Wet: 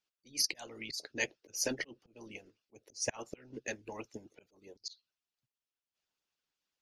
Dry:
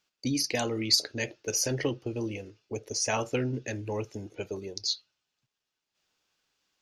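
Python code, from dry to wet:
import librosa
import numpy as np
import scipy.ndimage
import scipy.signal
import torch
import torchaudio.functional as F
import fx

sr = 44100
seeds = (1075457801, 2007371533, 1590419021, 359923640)

y = fx.auto_swell(x, sr, attack_ms=209.0)
y = fx.hpss(y, sr, part='harmonic', gain_db=-18)
y = fx.upward_expand(y, sr, threshold_db=-48.0, expansion=1.5)
y = F.gain(torch.from_numpy(y), 1.5).numpy()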